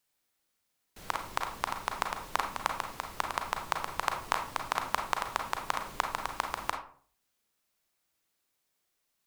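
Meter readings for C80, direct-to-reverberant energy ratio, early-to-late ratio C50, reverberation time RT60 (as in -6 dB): 12.0 dB, 3.5 dB, 7.5 dB, 0.50 s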